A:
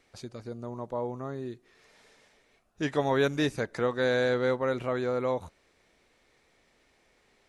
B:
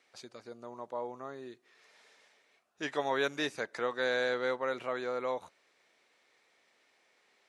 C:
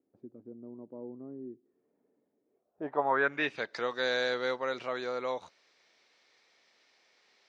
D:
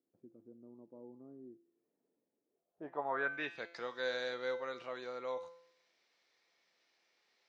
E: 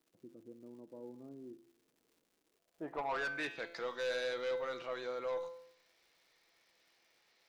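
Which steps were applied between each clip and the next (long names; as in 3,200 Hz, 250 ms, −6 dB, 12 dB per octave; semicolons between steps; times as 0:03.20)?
meter weighting curve A; level −2.5 dB
low-pass filter sweep 290 Hz → 5,200 Hz, 0:02.42–0:03.80
tuned comb filter 170 Hz, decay 0.66 s, harmonics all, mix 70%
soft clipping −35.5 dBFS, distortion −11 dB; surface crackle 270 per second −65 dBFS; convolution reverb RT60 0.75 s, pre-delay 6 ms, DRR 13.5 dB; level +3.5 dB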